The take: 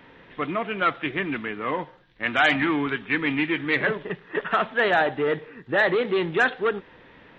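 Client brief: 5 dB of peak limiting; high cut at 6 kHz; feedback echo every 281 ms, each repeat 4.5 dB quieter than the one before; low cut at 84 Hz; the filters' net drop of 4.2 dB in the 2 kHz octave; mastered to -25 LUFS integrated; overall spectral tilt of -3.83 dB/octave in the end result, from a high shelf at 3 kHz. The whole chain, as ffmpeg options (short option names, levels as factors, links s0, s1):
-af "highpass=84,lowpass=6000,equalizer=f=2000:t=o:g=-4,highshelf=f=3000:g=-4,alimiter=limit=0.15:level=0:latency=1,aecho=1:1:281|562|843|1124|1405|1686|1967|2248|2529:0.596|0.357|0.214|0.129|0.0772|0.0463|0.0278|0.0167|0.01,volume=1.12"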